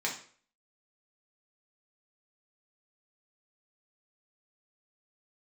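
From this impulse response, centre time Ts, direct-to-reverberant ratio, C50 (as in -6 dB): 22 ms, -3.0 dB, 8.0 dB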